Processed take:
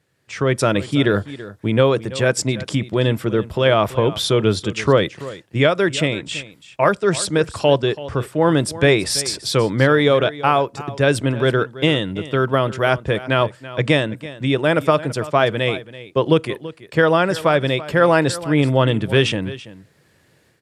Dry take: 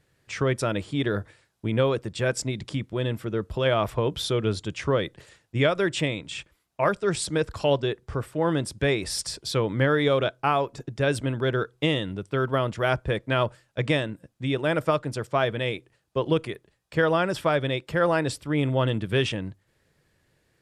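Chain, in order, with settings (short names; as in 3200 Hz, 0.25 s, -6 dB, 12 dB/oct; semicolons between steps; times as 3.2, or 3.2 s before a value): HPF 95 Hz; AGC; on a send: echo 0.332 s -16.5 dB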